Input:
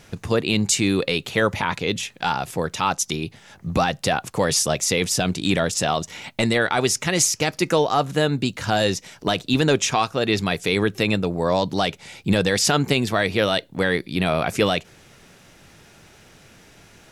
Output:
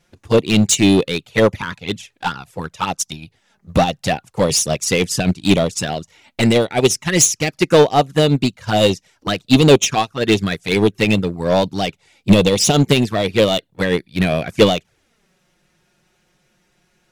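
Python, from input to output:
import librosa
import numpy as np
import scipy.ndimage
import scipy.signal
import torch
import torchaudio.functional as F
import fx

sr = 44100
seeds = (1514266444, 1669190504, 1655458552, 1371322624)

p1 = fx.env_flanger(x, sr, rest_ms=6.1, full_db=-16.0)
p2 = 10.0 ** (-18.0 / 20.0) * (np.abs((p1 / 10.0 ** (-18.0 / 20.0) + 3.0) % 4.0 - 2.0) - 1.0)
p3 = p1 + F.gain(torch.from_numpy(p2), -3.0).numpy()
p4 = fx.upward_expand(p3, sr, threshold_db=-30.0, expansion=2.5)
y = F.gain(torch.from_numpy(p4), 9.0).numpy()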